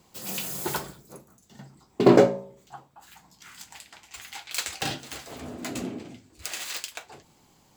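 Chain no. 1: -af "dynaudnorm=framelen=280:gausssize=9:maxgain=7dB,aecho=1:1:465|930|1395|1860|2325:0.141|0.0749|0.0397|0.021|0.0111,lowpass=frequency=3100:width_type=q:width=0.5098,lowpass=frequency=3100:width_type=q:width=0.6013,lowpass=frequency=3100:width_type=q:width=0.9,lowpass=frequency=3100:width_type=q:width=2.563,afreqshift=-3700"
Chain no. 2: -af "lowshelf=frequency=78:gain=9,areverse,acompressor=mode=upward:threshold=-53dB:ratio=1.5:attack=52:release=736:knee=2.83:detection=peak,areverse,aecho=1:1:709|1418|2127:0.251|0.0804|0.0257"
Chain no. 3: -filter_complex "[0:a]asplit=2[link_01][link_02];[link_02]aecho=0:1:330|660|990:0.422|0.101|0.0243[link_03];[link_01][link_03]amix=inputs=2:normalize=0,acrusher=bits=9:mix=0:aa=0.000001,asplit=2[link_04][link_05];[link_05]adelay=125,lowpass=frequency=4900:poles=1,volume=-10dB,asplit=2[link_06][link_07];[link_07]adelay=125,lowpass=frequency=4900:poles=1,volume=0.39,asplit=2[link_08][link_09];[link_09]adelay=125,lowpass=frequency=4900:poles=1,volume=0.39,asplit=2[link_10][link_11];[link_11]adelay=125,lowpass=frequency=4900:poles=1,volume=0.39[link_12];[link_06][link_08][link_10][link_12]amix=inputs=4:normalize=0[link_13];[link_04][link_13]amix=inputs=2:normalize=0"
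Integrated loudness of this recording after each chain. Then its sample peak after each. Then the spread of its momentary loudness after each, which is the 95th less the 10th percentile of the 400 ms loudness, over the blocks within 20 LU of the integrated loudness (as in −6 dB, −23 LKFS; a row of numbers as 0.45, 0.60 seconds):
−21.0, −27.0, −26.0 LKFS; −1.0, −2.0, −2.5 dBFS; 25, 23, 24 LU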